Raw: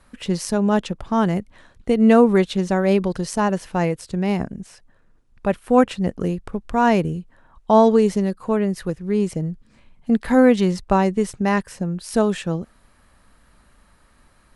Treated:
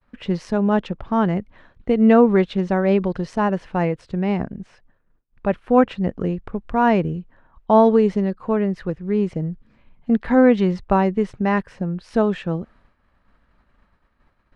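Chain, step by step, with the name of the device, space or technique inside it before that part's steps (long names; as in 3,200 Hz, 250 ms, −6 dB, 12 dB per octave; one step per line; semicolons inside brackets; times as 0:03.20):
hearing-loss simulation (low-pass filter 2,800 Hz 12 dB per octave; downward expander −48 dBFS)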